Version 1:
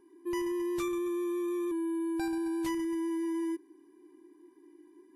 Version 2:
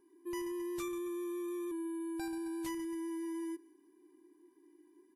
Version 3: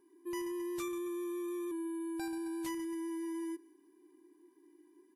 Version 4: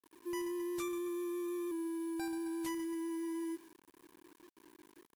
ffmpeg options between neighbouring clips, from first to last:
-af "highshelf=f=6500:g=7,aecho=1:1:171|342:0.0708|0.0212,volume=0.473"
-af "lowshelf=f=87:g=-7.5,volume=1.12"
-af "acrusher=bits=9:mix=0:aa=0.000001"

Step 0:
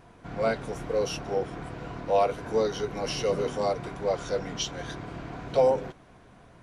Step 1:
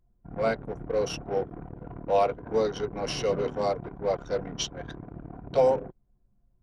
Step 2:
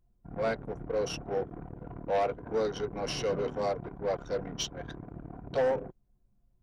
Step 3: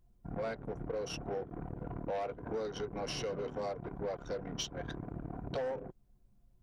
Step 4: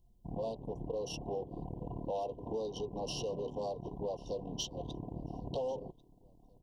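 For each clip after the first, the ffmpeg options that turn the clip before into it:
-af "anlmdn=6.31"
-af "asoftclip=type=tanh:threshold=0.1,volume=0.794"
-af "acompressor=threshold=0.0112:ratio=5,volume=1.41"
-af "asuperstop=centerf=1700:order=20:qfactor=1,aecho=1:1:1093|2186:0.0708|0.0234"

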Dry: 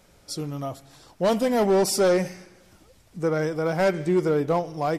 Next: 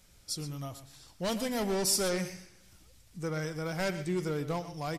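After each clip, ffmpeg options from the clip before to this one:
-af "equalizer=f=540:w=0.33:g=-13,aecho=1:1:121:0.224"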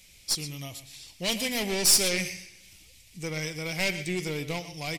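-af "highshelf=f=1800:t=q:w=3:g=8,aeval=exprs='0.422*(cos(1*acos(clip(val(0)/0.422,-1,1)))-cos(1*PI/2))+0.0335*(cos(6*acos(clip(val(0)/0.422,-1,1)))-cos(6*PI/2))':c=same"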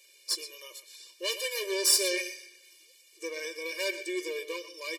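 -af "afftfilt=real='re*eq(mod(floor(b*sr/1024/310),2),1)':imag='im*eq(mod(floor(b*sr/1024/310),2),1)':win_size=1024:overlap=0.75"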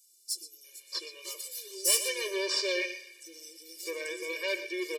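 -filter_complex "[0:a]acrossover=split=270|5300[s0][s1][s2];[s0]adelay=40[s3];[s1]adelay=640[s4];[s3][s4][s2]amix=inputs=3:normalize=0,asoftclip=type=tanh:threshold=0.168,volume=1.12"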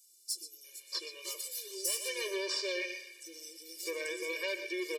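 -af "acompressor=threshold=0.0251:ratio=5"

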